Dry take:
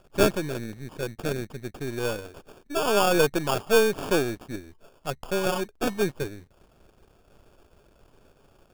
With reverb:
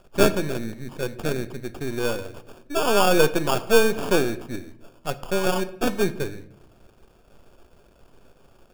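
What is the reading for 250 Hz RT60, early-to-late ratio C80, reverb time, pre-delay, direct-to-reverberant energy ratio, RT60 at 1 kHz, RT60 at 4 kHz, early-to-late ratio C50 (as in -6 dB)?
1.1 s, 18.5 dB, 0.80 s, 3 ms, 11.5 dB, 0.65 s, 0.50 s, 16.0 dB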